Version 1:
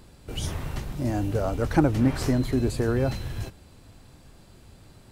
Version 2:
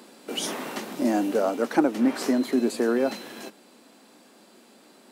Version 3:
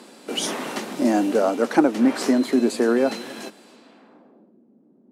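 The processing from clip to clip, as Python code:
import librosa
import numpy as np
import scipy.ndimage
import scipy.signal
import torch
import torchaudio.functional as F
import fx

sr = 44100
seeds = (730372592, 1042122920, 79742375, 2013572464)

y1 = scipy.signal.sosfilt(scipy.signal.ellip(4, 1.0, 60, 220.0, 'highpass', fs=sr, output='sos'), x)
y1 = fx.rider(y1, sr, range_db=3, speed_s=0.5)
y1 = F.gain(torch.from_numpy(y1), 4.0).numpy()
y2 = fx.filter_sweep_lowpass(y1, sr, from_hz=11000.0, to_hz=250.0, start_s=3.61, end_s=4.57, q=0.78)
y2 = y2 + 10.0 ** (-21.5 / 20.0) * np.pad(y2, (int(266 * sr / 1000.0), 0))[:len(y2)]
y2 = F.gain(torch.from_numpy(y2), 4.0).numpy()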